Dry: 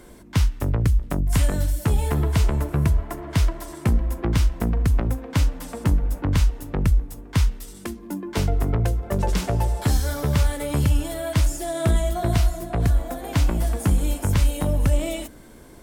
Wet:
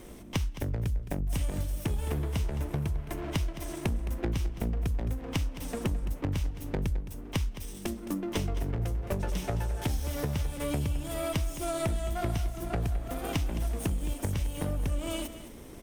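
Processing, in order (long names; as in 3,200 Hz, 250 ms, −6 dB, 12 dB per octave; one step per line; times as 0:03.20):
lower of the sound and its delayed copy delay 0.33 ms
downward compressor 6 to 1, threshold −28 dBFS, peak gain reduction 13.5 dB
single-tap delay 215 ms −13.5 dB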